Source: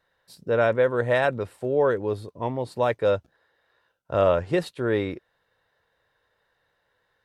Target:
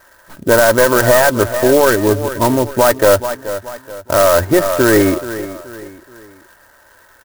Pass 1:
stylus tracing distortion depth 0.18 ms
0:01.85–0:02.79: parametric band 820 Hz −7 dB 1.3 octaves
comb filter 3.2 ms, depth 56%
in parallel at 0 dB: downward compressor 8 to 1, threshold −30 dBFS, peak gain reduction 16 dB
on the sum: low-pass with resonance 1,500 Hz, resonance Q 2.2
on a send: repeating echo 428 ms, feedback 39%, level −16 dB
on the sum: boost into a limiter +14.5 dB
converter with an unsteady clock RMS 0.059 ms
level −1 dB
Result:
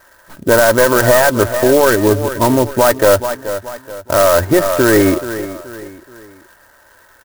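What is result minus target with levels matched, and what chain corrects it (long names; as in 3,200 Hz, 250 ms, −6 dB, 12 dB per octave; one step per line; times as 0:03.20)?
downward compressor: peak gain reduction −6.5 dB
stylus tracing distortion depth 0.18 ms
0:01.85–0:02.79: parametric band 820 Hz −7 dB 1.3 octaves
comb filter 3.2 ms, depth 56%
in parallel at 0 dB: downward compressor 8 to 1, threshold −37.5 dBFS, peak gain reduction 22.5 dB
on the sum: low-pass with resonance 1,500 Hz, resonance Q 2.2
on a send: repeating echo 428 ms, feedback 39%, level −16 dB
on the sum: boost into a limiter +14.5 dB
converter with an unsteady clock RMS 0.059 ms
level −1 dB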